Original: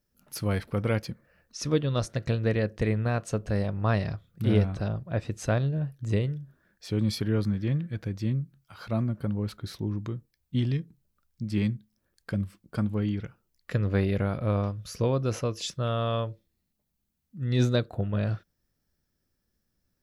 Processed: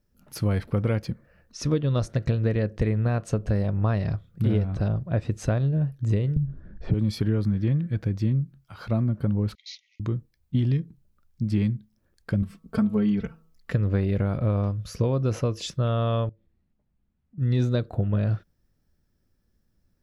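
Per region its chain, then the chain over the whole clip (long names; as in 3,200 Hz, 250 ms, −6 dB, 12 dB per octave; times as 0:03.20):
0:06.36–0:06.94: low-pass filter 7,300 Hz + spectral tilt −4.5 dB per octave + multiband upward and downward compressor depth 70%
0:09.55–0:10.00: leveller curve on the samples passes 1 + linear-phase brick-wall band-pass 1,900–6,900 Hz
0:12.42–0:13.72: comb filter 4.5 ms, depth 92% + hum removal 161.2 Hz, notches 8
0:16.29–0:17.38: low-pass filter 2,500 Hz + downward compressor 3 to 1, threshold −59 dBFS
whole clip: spectral tilt −1.5 dB per octave; downward compressor, threshold −22 dBFS; level +3 dB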